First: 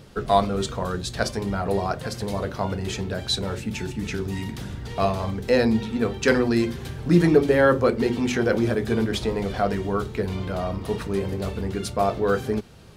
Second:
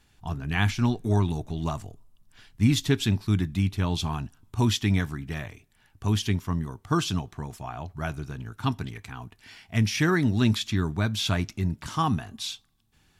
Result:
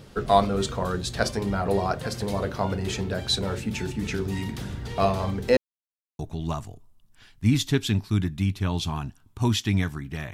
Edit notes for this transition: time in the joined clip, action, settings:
first
5.57–6.19 s: mute
6.19 s: go over to second from 1.36 s

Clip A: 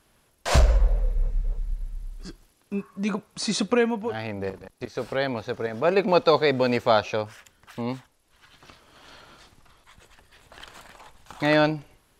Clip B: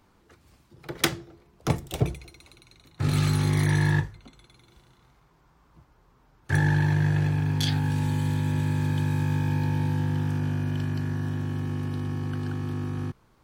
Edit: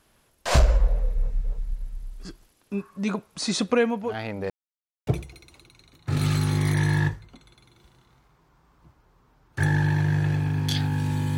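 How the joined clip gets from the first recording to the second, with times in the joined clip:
clip A
4.50–5.07 s: mute
5.07 s: go over to clip B from 1.99 s

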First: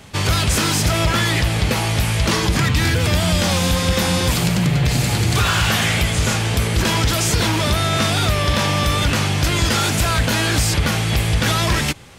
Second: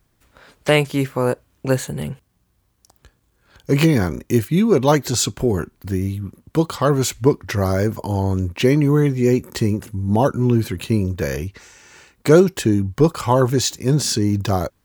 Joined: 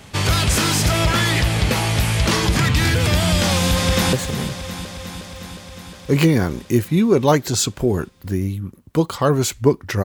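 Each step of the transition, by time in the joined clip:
first
3.41–4.13 s: echo throw 360 ms, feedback 75%, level -11 dB
4.13 s: go over to second from 1.73 s

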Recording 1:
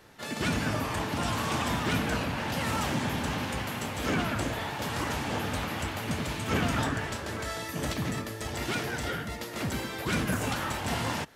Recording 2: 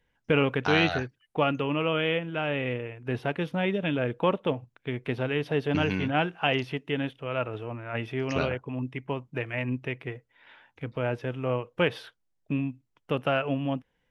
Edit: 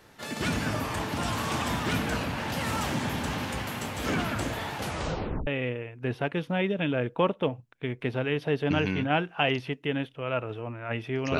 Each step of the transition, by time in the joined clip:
recording 1
4.76 s: tape stop 0.71 s
5.47 s: go over to recording 2 from 2.51 s

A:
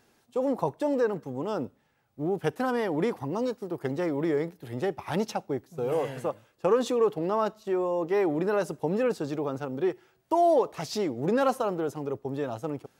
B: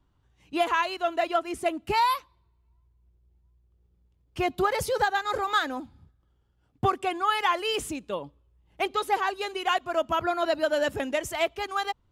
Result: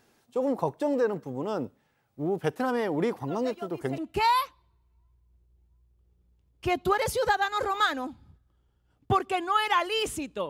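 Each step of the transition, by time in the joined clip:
A
3.27 s: add B from 1.00 s 0.71 s -15 dB
3.98 s: go over to B from 1.71 s

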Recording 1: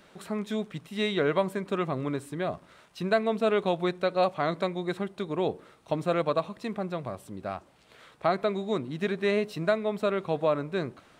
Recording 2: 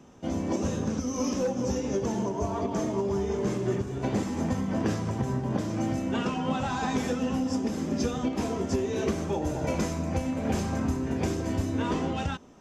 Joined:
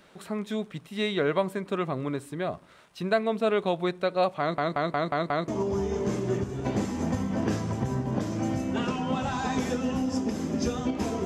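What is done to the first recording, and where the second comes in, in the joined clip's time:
recording 1
4.40 s: stutter in place 0.18 s, 6 plays
5.48 s: go over to recording 2 from 2.86 s

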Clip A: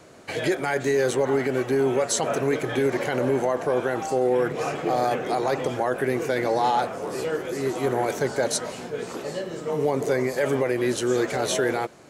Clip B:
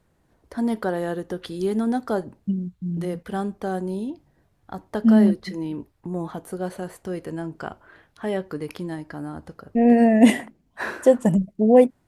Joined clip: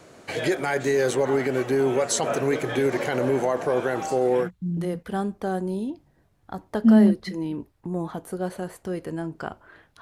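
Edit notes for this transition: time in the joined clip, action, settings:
clip A
4.45 s: go over to clip B from 2.65 s, crossfade 0.12 s

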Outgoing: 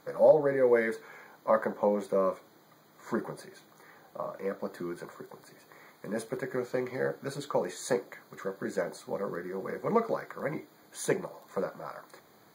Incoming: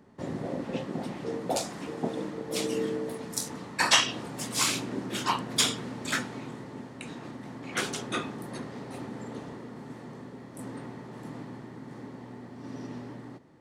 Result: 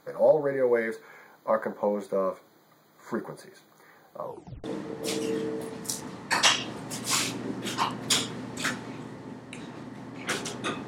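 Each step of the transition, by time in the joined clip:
outgoing
4.22 s: tape stop 0.42 s
4.64 s: go over to incoming from 2.12 s

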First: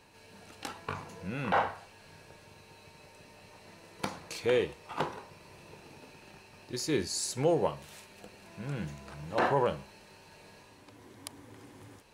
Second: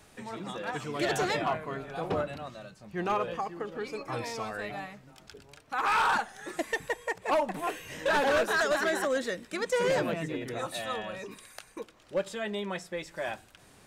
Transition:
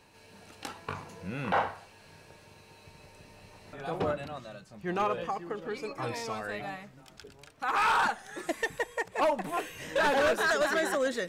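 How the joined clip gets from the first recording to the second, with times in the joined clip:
first
2.85–3.73 s: bass shelf 110 Hz +9 dB
3.73 s: go over to second from 1.83 s

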